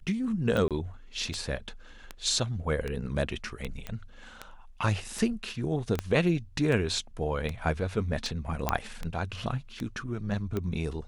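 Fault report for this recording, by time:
tick 78 rpm -19 dBFS
0.68–0.71 s: dropout 27 ms
3.87 s: pop -21 dBFS
5.99 s: pop -15 dBFS
8.69 s: pop -10 dBFS

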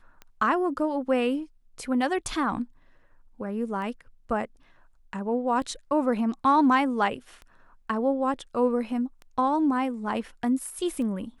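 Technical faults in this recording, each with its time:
tick 33 1/3 rpm -28 dBFS

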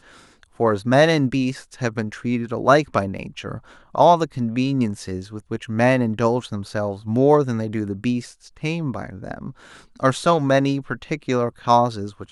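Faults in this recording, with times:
3.18–3.19 s: dropout 5.8 ms

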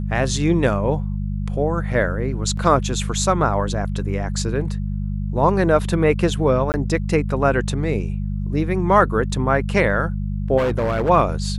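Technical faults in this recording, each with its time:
hum 50 Hz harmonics 4 -24 dBFS
2.57 s: dropout 4.2 ms
6.72–6.74 s: dropout 19 ms
10.57–11.10 s: clipped -16.5 dBFS

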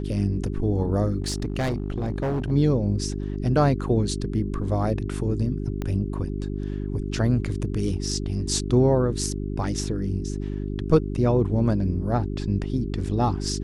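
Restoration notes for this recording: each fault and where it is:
hum 50 Hz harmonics 8 -29 dBFS
1.22–2.52 s: clipped -21.5 dBFS
5.82 s: pop -17 dBFS

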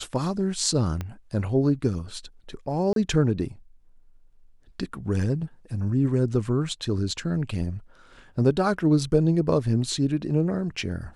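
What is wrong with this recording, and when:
1.01 s: pop -18 dBFS
2.93–2.96 s: dropout 32 ms

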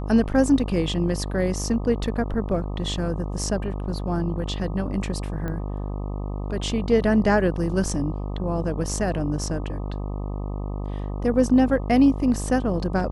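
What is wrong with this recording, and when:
buzz 50 Hz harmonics 25 -29 dBFS
5.48 s: pop -19 dBFS

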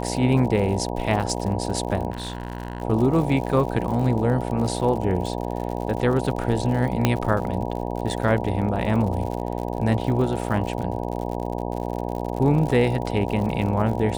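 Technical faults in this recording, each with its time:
buzz 60 Hz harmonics 16 -28 dBFS
crackle 76 per s -30 dBFS
2.10–2.82 s: clipped -25 dBFS
7.05 s: pop -4 dBFS

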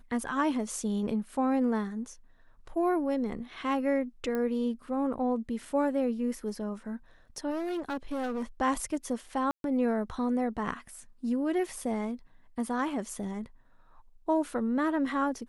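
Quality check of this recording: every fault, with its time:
4.35 s: pop -21 dBFS
7.50–8.43 s: clipped -29.5 dBFS
9.51–9.64 s: dropout 132 ms

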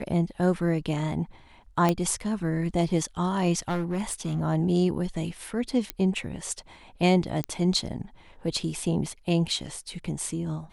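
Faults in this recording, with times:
1.89 s: pop -10 dBFS
3.68–4.41 s: clipped -23.5 dBFS
5.90 s: pop -12 dBFS
7.44 s: pop -14 dBFS

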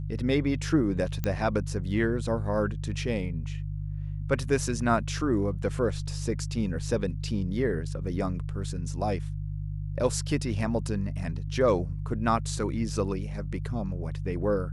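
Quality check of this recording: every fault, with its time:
hum 50 Hz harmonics 3 -33 dBFS
1.24 s: pop -15 dBFS

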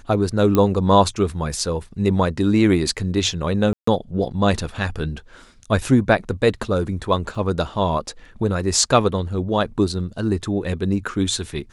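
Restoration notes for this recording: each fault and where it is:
0.55 s: pop -6 dBFS
3.73–3.87 s: dropout 144 ms
7.35 s: dropout 2.8 ms

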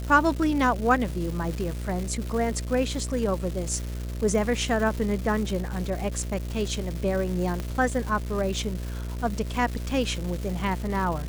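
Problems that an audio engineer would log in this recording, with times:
buzz 60 Hz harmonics 11 -32 dBFS
crackle 500 per s -32 dBFS
7.60 s: pop -18 dBFS

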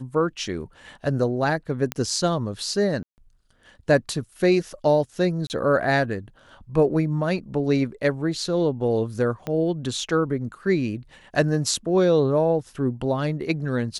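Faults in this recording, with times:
1.92 s: pop -10 dBFS
3.03–3.18 s: dropout 149 ms
5.47–5.50 s: dropout 29 ms
9.47 s: pop -16 dBFS

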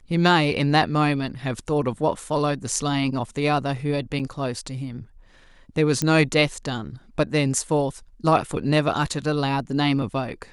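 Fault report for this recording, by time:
4.19–4.20 s: dropout 6.5 ms
6.02 s: pop -9 dBFS

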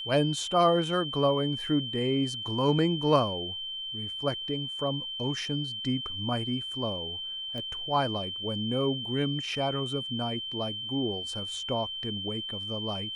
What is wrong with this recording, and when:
whine 3.1 kHz -34 dBFS
7.58 s: pop -25 dBFS

